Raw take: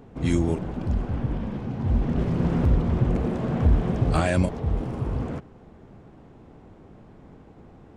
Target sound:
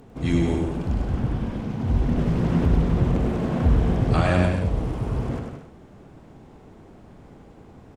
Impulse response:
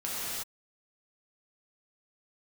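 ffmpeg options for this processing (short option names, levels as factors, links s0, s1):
-filter_complex "[0:a]aemphasis=mode=production:type=cd,acrossover=split=4600[s0][s1];[s1]acompressor=threshold=0.00178:ratio=4:attack=1:release=60[s2];[s0][s2]amix=inputs=2:normalize=0,aecho=1:1:100|175|231.2|273.4|305.1:0.631|0.398|0.251|0.158|0.1"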